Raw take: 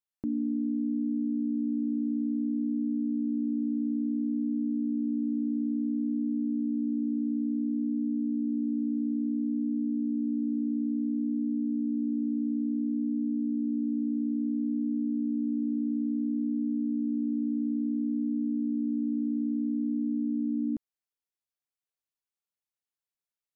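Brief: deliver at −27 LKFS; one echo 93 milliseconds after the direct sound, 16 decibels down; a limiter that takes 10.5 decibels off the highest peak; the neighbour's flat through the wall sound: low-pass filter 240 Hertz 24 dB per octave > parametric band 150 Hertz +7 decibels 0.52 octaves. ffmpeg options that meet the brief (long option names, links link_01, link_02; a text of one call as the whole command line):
ffmpeg -i in.wav -af "alimiter=level_in=9.5dB:limit=-24dB:level=0:latency=1,volume=-9.5dB,lowpass=frequency=240:width=0.5412,lowpass=frequency=240:width=1.3066,equalizer=frequency=150:width_type=o:width=0.52:gain=7,aecho=1:1:93:0.158,volume=16.5dB" out.wav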